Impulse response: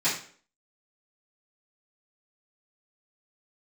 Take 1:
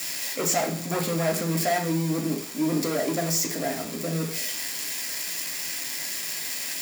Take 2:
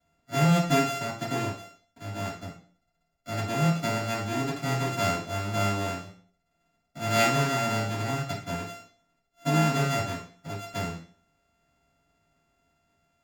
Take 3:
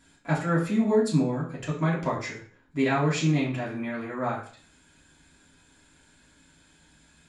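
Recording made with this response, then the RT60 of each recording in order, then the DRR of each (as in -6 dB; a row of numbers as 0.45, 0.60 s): 2; 0.50, 0.50, 0.50 s; 0.5, -13.5, -6.5 dB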